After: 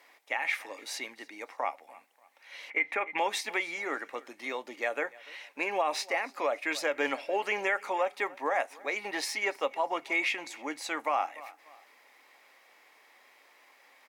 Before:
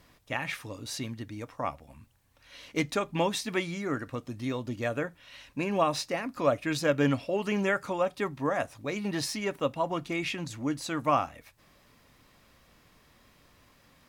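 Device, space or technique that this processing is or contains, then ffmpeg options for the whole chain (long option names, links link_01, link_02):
laptop speaker: -filter_complex "[0:a]asettb=1/sr,asplit=3[link_01][link_02][link_03];[link_01]atrim=end=2.704[link_04];[link_02]atrim=start=2.7:end=3.18,asetpts=PTS-STARTPTS,afade=type=in:duration=0.004:curve=qsin,afade=type=out:start_time=0.476:duration=0.004:curve=qsin,highshelf=frequency=3200:width_type=q:width=3:gain=-13[link_05];[link_03]atrim=start=3.176[link_06];[link_04][link_05]acrossfade=duration=0.004:curve1=hsin:curve2=qsin[link_07];[link_07][link_06]acrossfade=duration=0.004:curve1=qsin:curve2=hsin,highpass=frequency=370:width=0.5412,highpass=frequency=370:width=1.3066,equalizer=frequency=820:width_type=o:width=0.34:gain=9.5,equalizer=frequency=2100:width_type=o:width=0.49:gain=11,aecho=1:1:292|584:0.0668|0.0227,alimiter=limit=-16.5dB:level=0:latency=1:release=103,volume=-1.5dB"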